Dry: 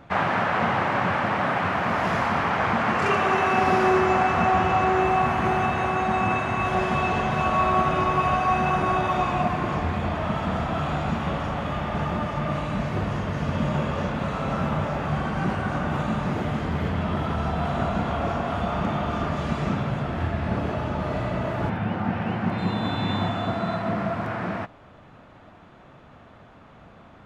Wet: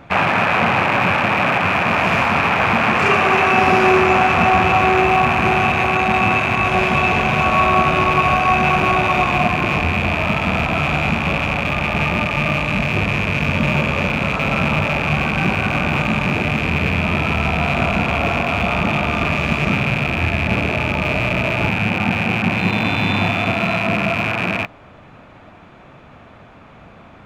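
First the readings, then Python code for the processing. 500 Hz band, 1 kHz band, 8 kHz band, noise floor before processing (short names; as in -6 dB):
+6.0 dB, +6.0 dB, +9.0 dB, -49 dBFS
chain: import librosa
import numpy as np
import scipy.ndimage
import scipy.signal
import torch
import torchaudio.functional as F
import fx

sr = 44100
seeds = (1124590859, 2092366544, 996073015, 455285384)

y = fx.rattle_buzz(x, sr, strikes_db=-35.0, level_db=-19.0)
y = fx.peak_eq(y, sr, hz=2400.0, db=7.0, octaves=0.27)
y = F.gain(torch.from_numpy(y), 6.0).numpy()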